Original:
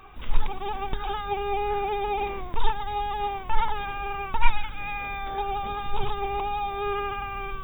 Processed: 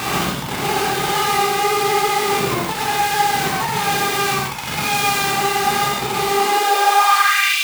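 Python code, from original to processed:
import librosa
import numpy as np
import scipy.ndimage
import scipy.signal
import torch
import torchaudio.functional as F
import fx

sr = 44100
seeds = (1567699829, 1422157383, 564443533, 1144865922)

y = np.sign(x) * np.sqrt(np.mean(np.square(x)))
y = fx.filter_sweep_highpass(y, sr, from_hz=150.0, to_hz=3100.0, start_s=6.16, end_s=7.55, q=3.1)
y = fx.rev_gated(y, sr, seeds[0], gate_ms=200, shape='flat', drr_db=-6.5)
y = y * 10.0 ** (-1.0 / 20.0)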